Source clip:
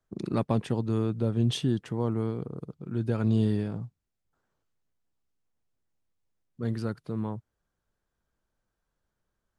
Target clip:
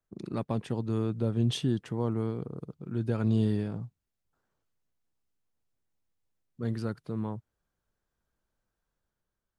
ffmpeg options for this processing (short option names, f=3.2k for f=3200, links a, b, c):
-af "dynaudnorm=f=300:g=5:m=4.5dB,volume=-6dB"